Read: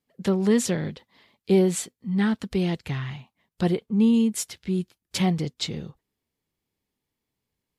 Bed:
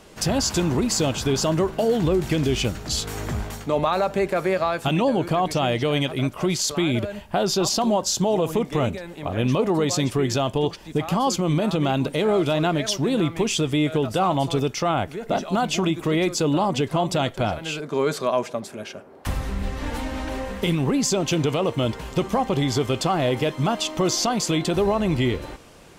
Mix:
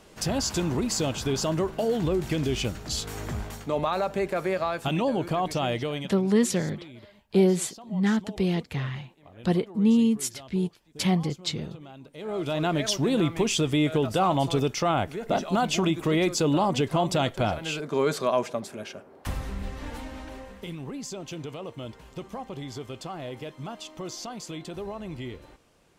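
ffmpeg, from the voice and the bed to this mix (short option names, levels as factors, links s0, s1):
-filter_complex "[0:a]adelay=5850,volume=0.891[s0];[1:a]volume=6.68,afade=t=out:st=5.73:d=0.46:silence=0.11885,afade=t=in:st=12.13:d=0.71:silence=0.0841395,afade=t=out:st=18.47:d=2.16:silence=0.223872[s1];[s0][s1]amix=inputs=2:normalize=0"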